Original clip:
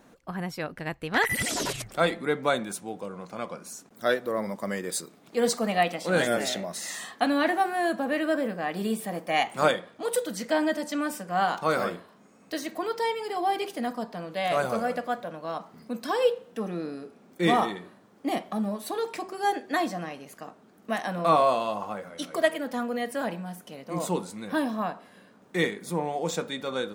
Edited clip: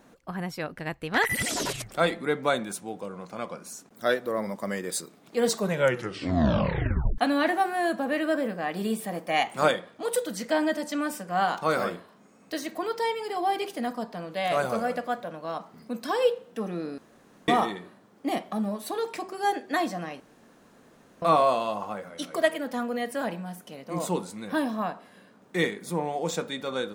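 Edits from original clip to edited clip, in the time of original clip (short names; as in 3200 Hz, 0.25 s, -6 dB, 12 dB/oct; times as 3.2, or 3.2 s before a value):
5.45 tape stop 1.73 s
16.98–17.48 room tone
20.2–21.22 room tone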